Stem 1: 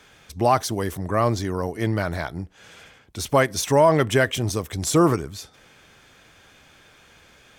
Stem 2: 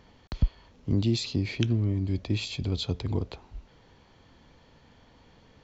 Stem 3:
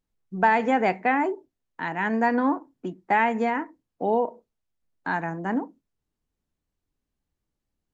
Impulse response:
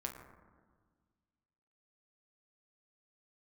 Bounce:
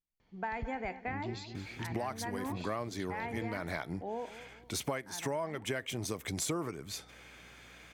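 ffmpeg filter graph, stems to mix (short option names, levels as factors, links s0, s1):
-filter_complex "[0:a]highpass=130,bandreject=f=5500:w=24,aeval=exprs='val(0)+0.00126*(sin(2*PI*60*n/s)+sin(2*PI*2*60*n/s)/2+sin(2*PI*3*60*n/s)/3+sin(2*PI*4*60*n/s)/4+sin(2*PI*5*60*n/s)/5)':c=same,adelay=1550,volume=0.708[s0];[1:a]adelay=200,volume=0.168,asplit=2[s1][s2];[s2]volume=0.316[s3];[2:a]volume=0.178,asplit=3[s4][s5][s6];[s5]volume=0.168[s7];[s6]apad=whole_len=402768[s8];[s0][s8]sidechaincompress=threshold=0.01:ratio=8:attack=10:release=449[s9];[s3][s7]amix=inputs=2:normalize=0,aecho=0:1:220|440|660|880|1100:1|0.38|0.144|0.0549|0.0209[s10];[s9][s1][s4][s10]amix=inputs=4:normalize=0,equalizer=f=2200:t=o:w=0.28:g=6.5,acompressor=threshold=0.0251:ratio=12"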